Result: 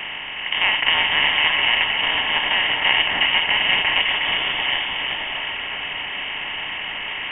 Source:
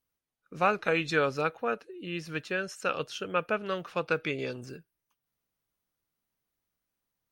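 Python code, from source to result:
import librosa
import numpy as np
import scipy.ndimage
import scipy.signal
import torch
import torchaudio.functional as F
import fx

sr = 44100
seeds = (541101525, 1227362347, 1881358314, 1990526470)

p1 = fx.bin_compress(x, sr, power=0.2)
p2 = scipy.signal.sosfilt(scipy.signal.butter(2, 130.0, 'highpass', fs=sr, output='sos'), p1)
p3 = fx.tube_stage(p2, sr, drive_db=21.0, bias=0.6, at=(4.02, 4.6))
p4 = p3 + fx.echo_split(p3, sr, split_hz=2200.0, low_ms=361, high_ms=619, feedback_pct=52, wet_db=-3.5, dry=0)
p5 = fx.freq_invert(p4, sr, carrier_hz=3400)
y = p5 * 10.0 ** (1.0 / 20.0)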